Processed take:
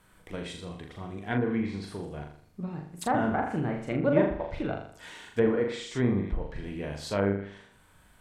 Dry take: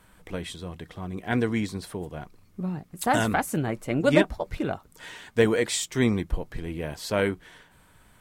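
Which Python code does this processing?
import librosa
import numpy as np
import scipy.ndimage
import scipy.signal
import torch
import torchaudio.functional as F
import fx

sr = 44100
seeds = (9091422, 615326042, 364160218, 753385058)

y = fx.room_flutter(x, sr, wall_m=6.9, rt60_s=0.56)
y = fx.env_lowpass_down(y, sr, base_hz=1300.0, full_db=-18.0)
y = F.gain(torch.from_numpy(y), -4.5).numpy()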